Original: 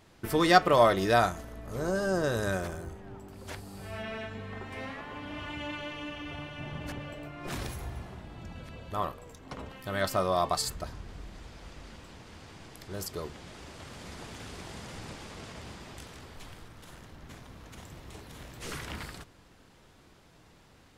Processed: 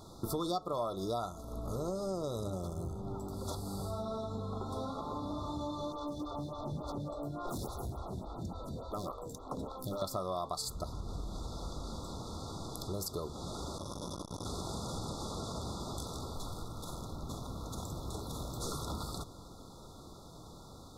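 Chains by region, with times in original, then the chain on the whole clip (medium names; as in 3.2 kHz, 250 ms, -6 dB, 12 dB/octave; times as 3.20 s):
2.40–3.08 s: peaking EQ 130 Hz +6.5 dB 1.6 oct + transformer saturation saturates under 400 Hz
5.92–10.02 s: overload inside the chain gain 34.5 dB + lamp-driven phase shifter 3.5 Hz
13.78–14.45 s: rippled EQ curve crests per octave 1.2, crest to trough 11 dB + transformer saturation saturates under 680 Hz
whole clip: FFT band-reject 1.4–3.4 kHz; compression 5:1, threshold -43 dBFS; trim +7.5 dB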